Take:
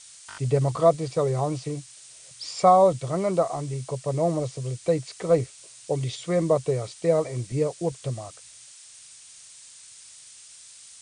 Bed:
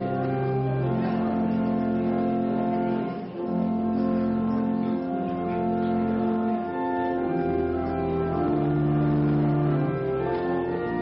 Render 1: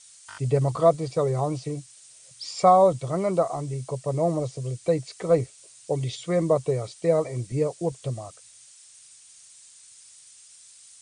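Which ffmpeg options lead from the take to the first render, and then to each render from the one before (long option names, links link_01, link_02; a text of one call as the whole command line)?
ffmpeg -i in.wav -af "afftdn=noise_reduction=6:noise_floor=-48" out.wav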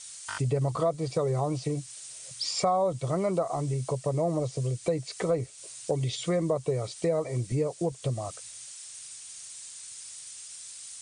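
ffmpeg -i in.wav -filter_complex "[0:a]asplit=2[link_01][link_02];[link_02]alimiter=limit=-16dB:level=0:latency=1:release=105,volume=1.5dB[link_03];[link_01][link_03]amix=inputs=2:normalize=0,acompressor=threshold=-29dB:ratio=2.5" out.wav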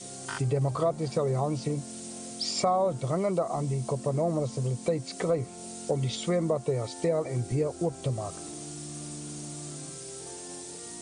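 ffmpeg -i in.wav -i bed.wav -filter_complex "[1:a]volume=-19dB[link_01];[0:a][link_01]amix=inputs=2:normalize=0" out.wav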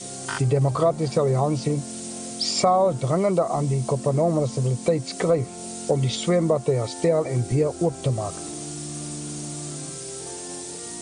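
ffmpeg -i in.wav -af "volume=6.5dB" out.wav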